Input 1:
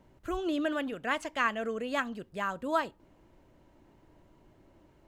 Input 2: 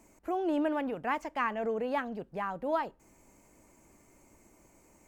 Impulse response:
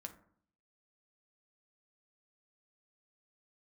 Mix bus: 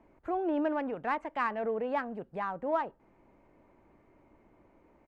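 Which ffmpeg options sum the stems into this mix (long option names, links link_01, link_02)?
-filter_complex "[0:a]acrossover=split=140[link_01][link_02];[link_02]acompressor=threshold=-34dB:ratio=6[link_03];[link_01][link_03]amix=inputs=2:normalize=0,volume=-9.5dB[link_04];[1:a]bass=frequency=250:gain=-5,treble=frequency=4000:gain=-13,adynamicsmooth=sensitivity=7:basefreq=3300,volume=-1,adelay=0.5,volume=1dB,asplit=2[link_05][link_06];[link_06]apad=whole_len=223602[link_07];[link_04][link_07]sidechaincompress=threshold=-37dB:ratio=8:attack=6.3:release=172[link_08];[link_08][link_05]amix=inputs=2:normalize=0,aemphasis=mode=reproduction:type=50kf"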